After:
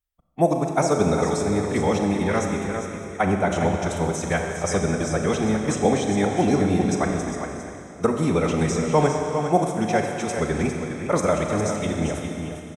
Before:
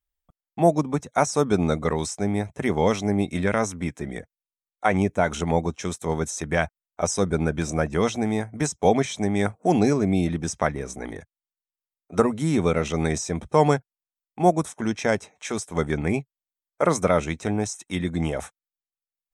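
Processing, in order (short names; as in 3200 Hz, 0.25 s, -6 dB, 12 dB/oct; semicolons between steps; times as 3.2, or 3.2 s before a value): tapped delay 0.553/0.614 s -16.5/-8 dB; time stretch by phase-locked vocoder 0.66×; Schroeder reverb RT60 2.8 s, combs from 29 ms, DRR 3 dB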